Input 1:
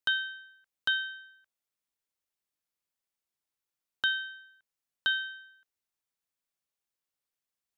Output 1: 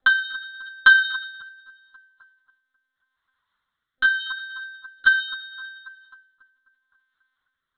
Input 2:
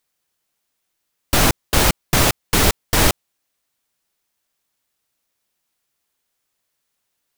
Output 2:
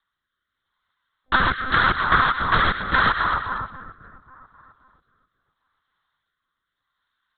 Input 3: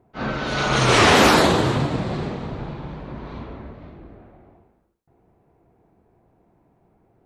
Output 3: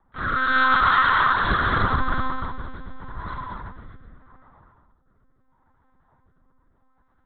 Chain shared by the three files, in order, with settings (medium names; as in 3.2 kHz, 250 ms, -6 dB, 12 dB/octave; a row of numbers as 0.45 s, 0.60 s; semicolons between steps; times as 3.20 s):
static phaser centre 510 Hz, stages 8; comb of notches 220 Hz; dynamic bell 1.4 kHz, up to +6 dB, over -38 dBFS, Q 1.5; high-pass 43 Hz 24 dB/octave; FFT band-reject 210–650 Hz; bass shelf 220 Hz -8.5 dB; two-band feedback delay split 1.4 kHz, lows 268 ms, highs 118 ms, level -11.5 dB; monotone LPC vocoder at 8 kHz 260 Hz; rotary cabinet horn 0.8 Hz; compression 16:1, threshold -28 dBFS; normalise loudness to -20 LUFS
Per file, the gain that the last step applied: +27.0 dB, +14.5 dB, +13.5 dB